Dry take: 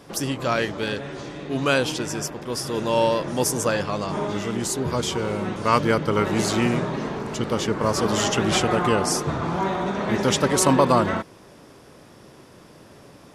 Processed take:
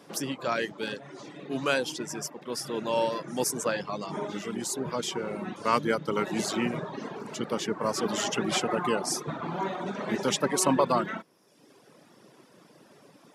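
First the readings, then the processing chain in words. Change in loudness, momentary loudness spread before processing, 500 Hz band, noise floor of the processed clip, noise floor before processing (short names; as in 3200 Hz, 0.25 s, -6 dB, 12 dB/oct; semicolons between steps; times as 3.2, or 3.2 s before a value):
-7.0 dB, 9 LU, -6.5 dB, -58 dBFS, -48 dBFS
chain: HPF 150 Hz 24 dB/oct; reverb removal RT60 0.99 s; gain -5 dB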